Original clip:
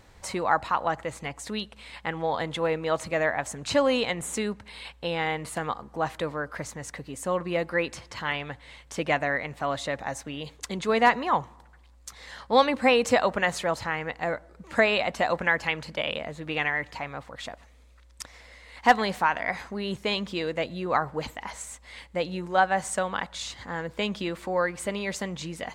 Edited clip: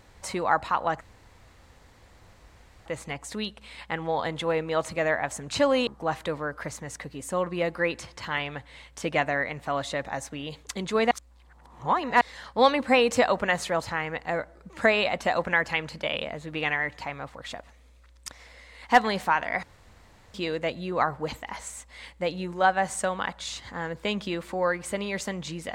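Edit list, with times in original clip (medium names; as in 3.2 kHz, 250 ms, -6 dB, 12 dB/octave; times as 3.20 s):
1.01 s: insert room tone 1.85 s
4.02–5.81 s: delete
11.05–12.15 s: reverse
19.57–20.28 s: room tone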